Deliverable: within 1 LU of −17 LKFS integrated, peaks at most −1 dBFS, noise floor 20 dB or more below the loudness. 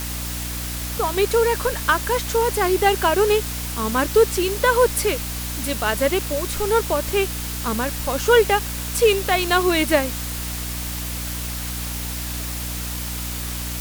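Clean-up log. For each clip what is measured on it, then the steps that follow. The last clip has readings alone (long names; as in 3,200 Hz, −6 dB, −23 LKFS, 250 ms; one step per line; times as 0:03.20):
mains hum 60 Hz; hum harmonics up to 300 Hz; level of the hum −28 dBFS; background noise floor −28 dBFS; target noise floor −41 dBFS; integrated loudness −21.0 LKFS; sample peak −3.0 dBFS; target loudness −17.0 LKFS
→ hum removal 60 Hz, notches 5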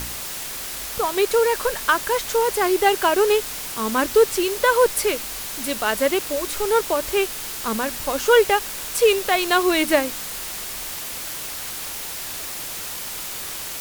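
mains hum none found; background noise floor −31 dBFS; target noise floor −42 dBFS
→ broadband denoise 11 dB, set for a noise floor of −31 dBFS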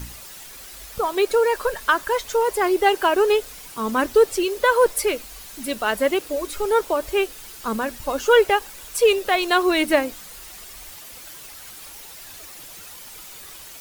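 background noise floor −41 dBFS; integrated loudness −21.0 LKFS; sample peak −3.5 dBFS; target loudness −17.0 LKFS
→ level +4 dB
brickwall limiter −1 dBFS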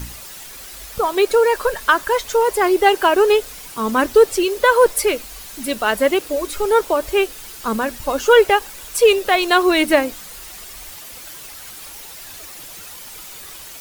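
integrated loudness −17.0 LKFS; sample peak −1.0 dBFS; background noise floor −37 dBFS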